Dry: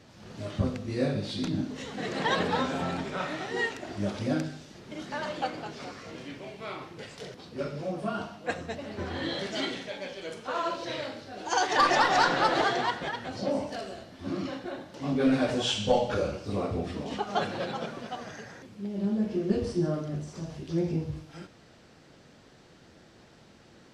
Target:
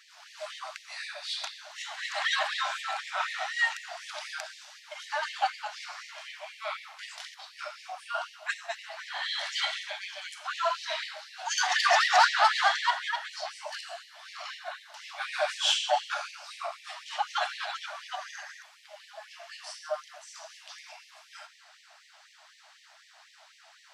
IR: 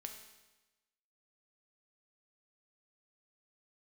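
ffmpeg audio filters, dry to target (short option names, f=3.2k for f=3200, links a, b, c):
-filter_complex "[0:a]asoftclip=type=tanh:threshold=-15dB,equalizer=f=210:w=1.5:g=12,asplit=2[a][b];[1:a]atrim=start_sample=2205,asetrate=42777,aresample=44100[c];[b][c]afir=irnorm=-1:irlink=0,volume=-9dB[d];[a][d]amix=inputs=2:normalize=0,afftfilt=real='re*gte(b*sr/1024,570*pow(1800/570,0.5+0.5*sin(2*PI*4*pts/sr)))':imag='im*gte(b*sr/1024,570*pow(1800/570,0.5+0.5*sin(2*PI*4*pts/sr)))':win_size=1024:overlap=0.75,volume=3dB"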